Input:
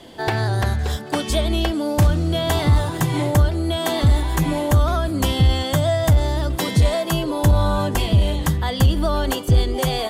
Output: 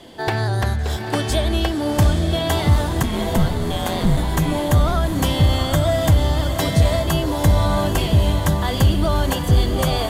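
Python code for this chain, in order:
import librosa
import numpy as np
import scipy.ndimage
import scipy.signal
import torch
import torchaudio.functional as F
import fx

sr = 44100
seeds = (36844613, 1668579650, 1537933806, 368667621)

y = fx.ring_mod(x, sr, carrier_hz=87.0, at=(3.02, 4.16), fade=0.02)
y = fx.echo_diffused(y, sr, ms=820, feedback_pct=47, wet_db=-6.5)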